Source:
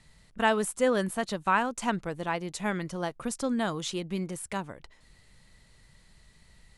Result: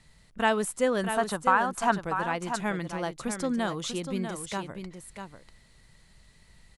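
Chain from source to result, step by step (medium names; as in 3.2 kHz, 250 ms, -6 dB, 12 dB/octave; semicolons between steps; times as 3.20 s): 1.11–2.03 s: time-frequency box 660–1800 Hz +8 dB; 0.85–1.90 s: compression 2:1, threshold -22 dBFS, peak gain reduction 6.5 dB; on a send: delay 643 ms -8 dB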